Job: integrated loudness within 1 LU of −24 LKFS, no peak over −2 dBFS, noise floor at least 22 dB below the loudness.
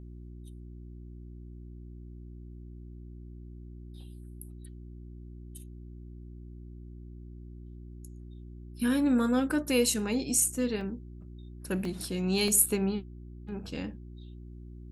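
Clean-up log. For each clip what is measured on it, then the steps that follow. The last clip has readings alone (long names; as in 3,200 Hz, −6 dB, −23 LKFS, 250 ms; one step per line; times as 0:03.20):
number of dropouts 3; longest dropout 2.0 ms; mains hum 60 Hz; hum harmonics up to 360 Hz; level of the hum −43 dBFS; integrated loudness −28.5 LKFS; sample peak −10.5 dBFS; target loudness −24.0 LKFS
→ repair the gap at 0:10.81/0:11.85/0:12.48, 2 ms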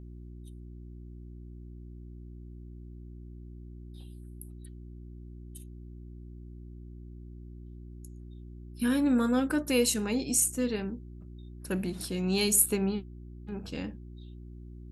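number of dropouts 0; mains hum 60 Hz; hum harmonics up to 360 Hz; level of the hum −43 dBFS
→ hum removal 60 Hz, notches 6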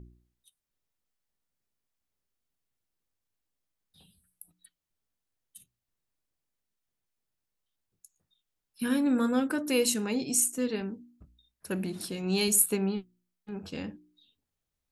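mains hum none found; integrated loudness −28.5 LKFS; sample peak −10.5 dBFS; target loudness −24.0 LKFS
→ level +4.5 dB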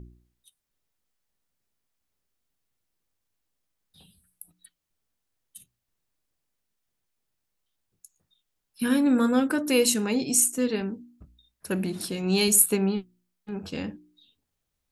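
integrated loudness −24.0 LKFS; sample peak −6.0 dBFS; background noise floor −82 dBFS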